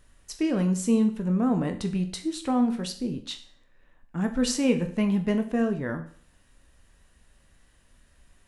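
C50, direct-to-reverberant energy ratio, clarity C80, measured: 12.0 dB, 6.0 dB, 15.0 dB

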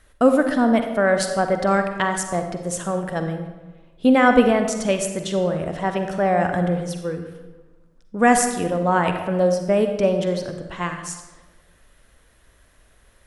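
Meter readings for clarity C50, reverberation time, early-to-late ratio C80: 6.5 dB, 1.2 s, 8.5 dB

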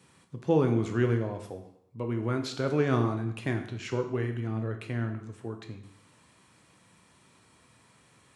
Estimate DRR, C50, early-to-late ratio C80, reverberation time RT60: 5.0 dB, 9.0 dB, 12.0 dB, 0.70 s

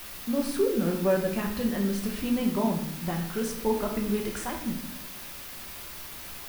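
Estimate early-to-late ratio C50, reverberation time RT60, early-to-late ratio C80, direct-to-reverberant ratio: 7.0 dB, 0.75 s, 10.0 dB, 0.5 dB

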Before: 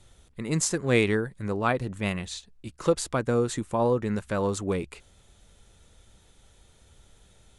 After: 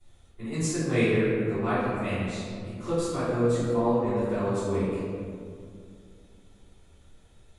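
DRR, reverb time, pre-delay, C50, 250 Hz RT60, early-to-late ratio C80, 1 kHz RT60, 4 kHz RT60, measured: −18.0 dB, 2.3 s, 3 ms, −3.0 dB, 3.1 s, −0.5 dB, 2.1 s, 1.1 s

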